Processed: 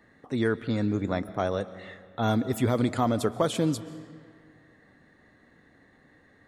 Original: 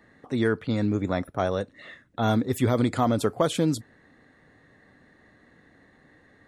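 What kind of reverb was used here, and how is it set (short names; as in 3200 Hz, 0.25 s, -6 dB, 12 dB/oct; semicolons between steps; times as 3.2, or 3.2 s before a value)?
digital reverb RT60 2.1 s, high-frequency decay 0.7×, pre-delay 95 ms, DRR 15.5 dB; gain -2 dB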